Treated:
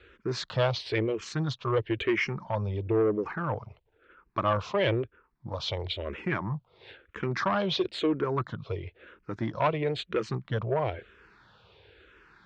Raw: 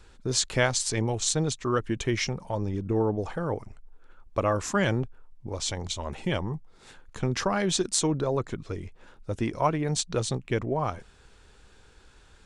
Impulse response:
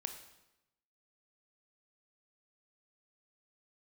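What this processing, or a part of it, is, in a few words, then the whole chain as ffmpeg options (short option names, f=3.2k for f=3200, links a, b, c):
barber-pole phaser into a guitar amplifier: -filter_complex "[0:a]asplit=2[a][b];[b]afreqshift=-1[c];[a][c]amix=inputs=2:normalize=1,asoftclip=type=tanh:threshold=-23dB,highpass=110,equalizer=f=170:t=q:w=4:g=-6,equalizer=f=250:t=q:w=4:g=-10,equalizer=f=790:t=q:w=4:g=-6,lowpass=f=3.6k:w=0.5412,lowpass=f=3.6k:w=1.3066,volume=6.5dB"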